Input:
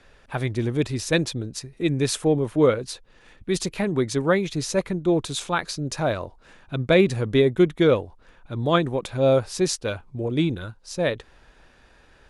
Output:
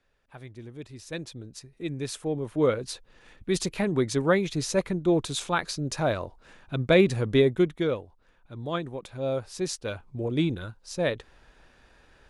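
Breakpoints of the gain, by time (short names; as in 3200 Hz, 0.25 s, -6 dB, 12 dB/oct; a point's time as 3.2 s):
0.81 s -18 dB
1.55 s -10 dB
2.24 s -10 dB
2.91 s -2 dB
7.43 s -2 dB
7.98 s -10.5 dB
9.31 s -10.5 dB
10.17 s -3 dB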